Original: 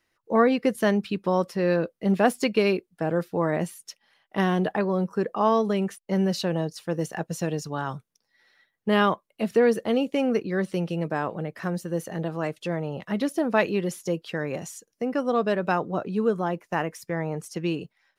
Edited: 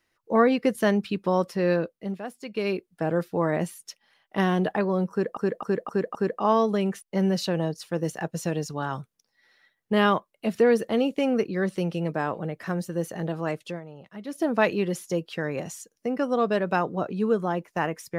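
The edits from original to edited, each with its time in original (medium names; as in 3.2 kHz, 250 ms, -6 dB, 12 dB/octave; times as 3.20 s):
1.72–2.92 s: dip -15.5 dB, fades 0.49 s
5.11–5.37 s: loop, 5 plays
12.59–13.40 s: dip -12.5 dB, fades 0.18 s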